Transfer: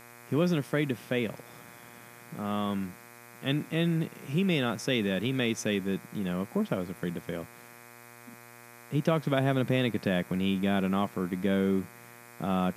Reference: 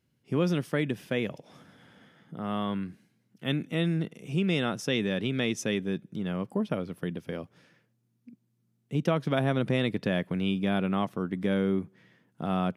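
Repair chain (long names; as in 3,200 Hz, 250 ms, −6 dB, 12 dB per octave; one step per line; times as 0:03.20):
hum removal 119.2 Hz, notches 21
broadband denoise 20 dB, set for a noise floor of −51 dBFS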